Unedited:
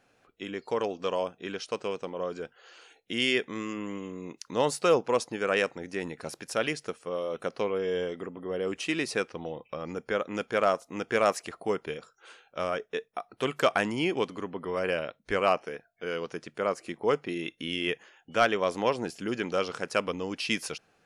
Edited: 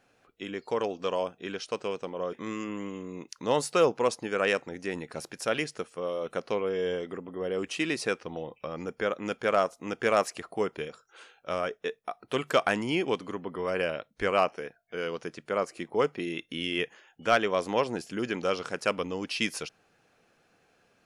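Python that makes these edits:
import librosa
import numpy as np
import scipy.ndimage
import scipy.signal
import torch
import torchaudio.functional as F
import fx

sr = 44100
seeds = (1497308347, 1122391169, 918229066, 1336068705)

y = fx.edit(x, sr, fx.cut(start_s=2.33, length_s=1.09), tone=tone)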